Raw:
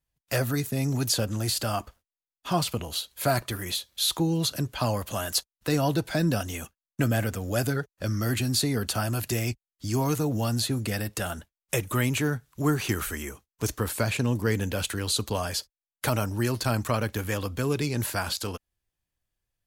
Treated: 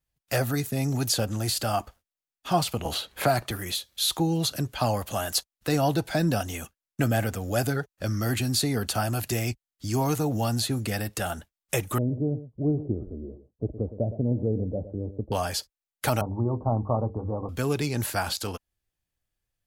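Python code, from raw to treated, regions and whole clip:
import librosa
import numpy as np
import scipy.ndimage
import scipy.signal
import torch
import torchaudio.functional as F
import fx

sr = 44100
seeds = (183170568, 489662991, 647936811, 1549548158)

y = fx.chain(x, sr, fx.high_shelf(hz=6000.0, db=-5.0),
    fx.band_squash(depth_pct=70), at=(2.85, 3.51))
y = fx.chain(y, sr, fx.ellip_lowpass(hz=610.0, order=4, stop_db=70),
    fx.echo_single(ms=115, db=-13.0), at=(11.98, 15.32))
y = fx.chain(y, sr, fx.steep_lowpass(hz=1100.0, slope=72),
    fx.peak_eq(hz=82.0, db=3.5, octaves=1.1),
    fx.hum_notches(base_hz=50, count=10), at=(16.21, 17.49))
y = fx.notch(y, sr, hz=1000.0, q=17.0)
y = fx.dynamic_eq(y, sr, hz=780.0, q=3.0, threshold_db=-46.0, ratio=4.0, max_db=6)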